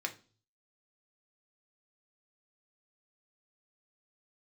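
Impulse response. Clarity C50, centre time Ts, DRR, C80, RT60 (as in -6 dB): 15.0 dB, 8 ms, 3.0 dB, 21.5 dB, 0.40 s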